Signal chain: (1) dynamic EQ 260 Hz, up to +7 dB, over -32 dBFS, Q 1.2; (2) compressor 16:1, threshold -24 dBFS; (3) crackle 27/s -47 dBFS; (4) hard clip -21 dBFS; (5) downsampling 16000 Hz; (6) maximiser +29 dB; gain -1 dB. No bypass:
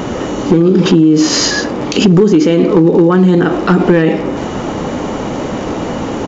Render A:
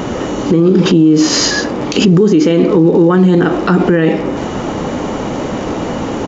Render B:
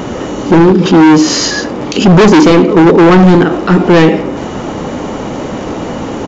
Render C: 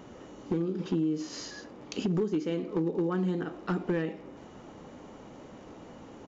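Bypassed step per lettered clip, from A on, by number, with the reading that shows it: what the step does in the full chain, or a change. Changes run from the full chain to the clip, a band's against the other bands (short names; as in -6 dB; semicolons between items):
4, distortion -20 dB; 2, mean gain reduction 7.5 dB; 6, crest factor change +3.5 dB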